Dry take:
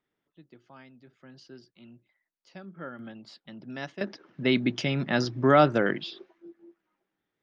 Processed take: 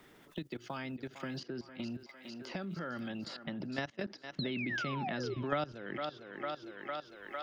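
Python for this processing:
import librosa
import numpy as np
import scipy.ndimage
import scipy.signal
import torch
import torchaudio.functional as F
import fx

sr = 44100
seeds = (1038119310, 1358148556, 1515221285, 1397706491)

p1 = fx.spec_paint(x, sr, seeds[0], shape='fall', start_s=4.39, length_s=0.95, low_hz=370.0, high_hz=4300.0, level_db=-32.0)
p2 = fx.level_steps(p1, sr, step_db=18)
p3 = p2 + fx.echo_thinned(p2, sr, ms=454, feedback_pct=49, hz=340.0, wet_db=-14.0, dry=0)
y = fx.band_squash(p3, sr, depth_pct=100)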